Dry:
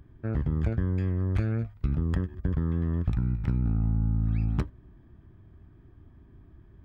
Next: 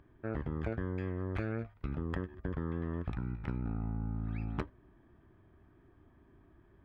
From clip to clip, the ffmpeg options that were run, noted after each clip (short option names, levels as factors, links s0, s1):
-af "bass=f=250:g=-12,treble=f=4000:g=-12"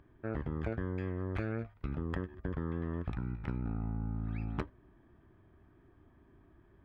-af anull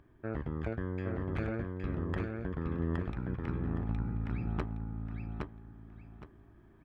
-af "aecho=1:1:816|1632|2448|3264:0.708|0.177|0.0442|0.0111"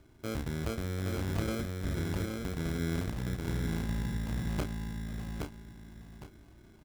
-filter_complex "[0:a]asplit=2[s0][s1];[s1]asoftclip=type=tanh:threshold=0.0376,volume=0.708[s2];[s0][s2]amix=inputs=2:normalize=0,acrusher=samples=24:mix=1:aa=0.000001,asplit=2[s3][s4];[s4]adelay=31,volume=0.447[s5];[s3][s5]amix=inputs=2:normalize=0,volume=0.708"